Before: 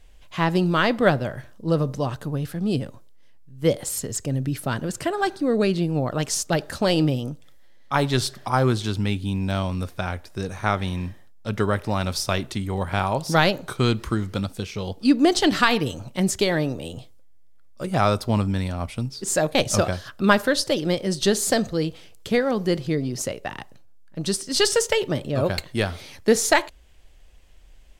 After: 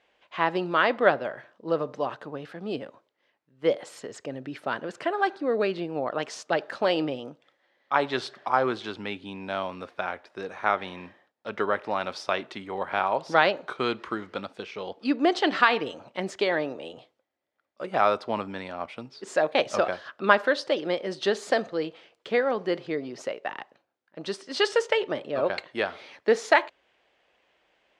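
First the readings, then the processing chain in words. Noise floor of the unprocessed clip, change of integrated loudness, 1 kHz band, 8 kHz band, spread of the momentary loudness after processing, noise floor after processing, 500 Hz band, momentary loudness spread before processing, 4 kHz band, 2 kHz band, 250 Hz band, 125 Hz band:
-46 dBFS, -4.0 dB, -0.5 dB, -18.0 dB, 15 LU, -74 dBFS, -2.0 dB, 11 LU, -6.5 dB, -1.0 dB, -9.0 dB, -19.0 dB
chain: BPF 430–2700 Hz

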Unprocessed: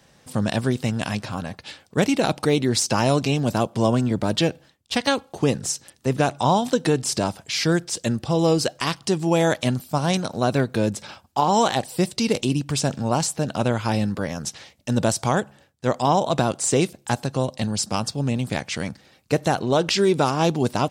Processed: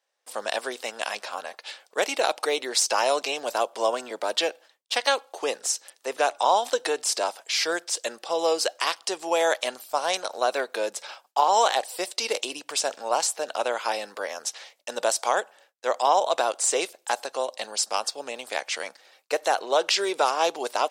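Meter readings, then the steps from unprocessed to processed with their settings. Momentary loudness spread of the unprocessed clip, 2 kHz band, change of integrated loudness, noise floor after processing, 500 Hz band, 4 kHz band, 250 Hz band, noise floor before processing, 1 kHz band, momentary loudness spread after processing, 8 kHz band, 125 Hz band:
8 LU, 0.0 dB, -3.5 dB, -67 dBFS, -3.0 dB, 0.0 dB, -18.5 dB, -58 dBFS, 0.0 dB, 10 LU, 0.0 dB, under -40 dB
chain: gate with hold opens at -44 dBFS; HPF 490 Hz 24 dB/oct

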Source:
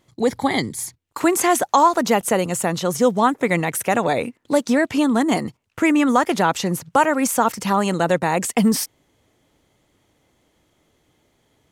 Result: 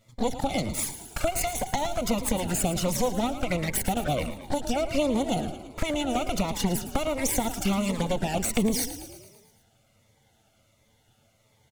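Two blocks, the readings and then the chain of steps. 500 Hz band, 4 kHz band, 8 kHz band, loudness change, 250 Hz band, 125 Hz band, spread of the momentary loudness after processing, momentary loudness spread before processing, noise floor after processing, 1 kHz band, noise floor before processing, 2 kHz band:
-8.5 dB, -3.5 dB, -4.5 dB, -8.5 dB, -8.5 dB, -3.0 dB, 5 LU, 7 LU, -65 dBFS, -12.0 dB, -66 dBFS, -11.5 dB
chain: minimum comb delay 1.4 ms; compressor 6:1, threshold -24 dBFS, peak gain reduction 11 dB; envelope flanger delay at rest 9.5 ms, full sweep at -24 dBFS; on a send: frequency-shifting echo 0.111 s, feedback 60%, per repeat +31 Hz, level -12 dB; on the sum: cascading phaser falling 1.4 Hz; gain +4.5 dB

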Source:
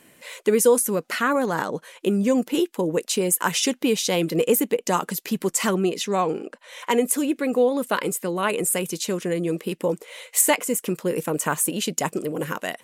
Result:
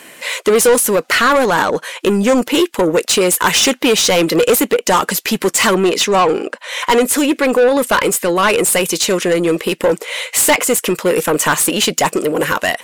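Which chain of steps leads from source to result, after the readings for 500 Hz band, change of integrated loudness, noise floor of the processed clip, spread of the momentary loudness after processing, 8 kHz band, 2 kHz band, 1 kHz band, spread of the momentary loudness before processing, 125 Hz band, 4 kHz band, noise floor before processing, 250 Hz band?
+9.0 dB, +9.0 dB, -44 dBFS, 6 LU, +8.5 dB, +12.5 dB, +11.0 dB, 8 LU, +5.5 dB, +13.0 dB, -58 dBFS, +7.0 dB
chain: overdrive pedal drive 23 dB, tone 6900 Hz, clips at -4.5 dBFS; gain +1.5 dB

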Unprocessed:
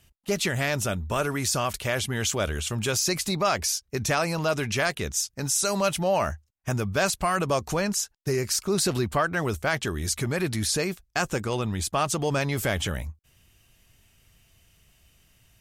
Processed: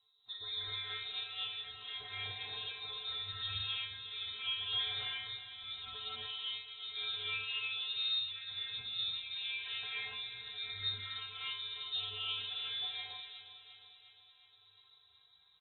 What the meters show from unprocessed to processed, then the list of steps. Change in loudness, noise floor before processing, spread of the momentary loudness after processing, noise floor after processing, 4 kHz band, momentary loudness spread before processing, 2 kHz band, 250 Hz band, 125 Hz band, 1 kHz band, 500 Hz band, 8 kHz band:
-12.0 dB, -67 dBFS, 9 LU, -67 dBFS, -2.0 dB, 4 LU, -13.5 dB, under -40 dB, -27.0 dB, -22.5 dB, -33.5 dB, under -40 dB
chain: compressor 2.5:1, threshold -29 dBFS, peak gain reduction 7.5 dB; buzz 50 Hz, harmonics 15, -54 dBFS -5 dB/oct; metallic resonator 210 Hz, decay 0.5 s, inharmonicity 0.002; rotary speaker horn 0.8 Hz, later 6 Hz, at 14.35; doubler 40 ms -14 dB; on a send: feedback echo 0.356 s, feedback 60%, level -12.5 dB; on the sum: non-linear reverb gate 0.32 s rising, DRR -6.5 dB; inverted band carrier 3900 Hz

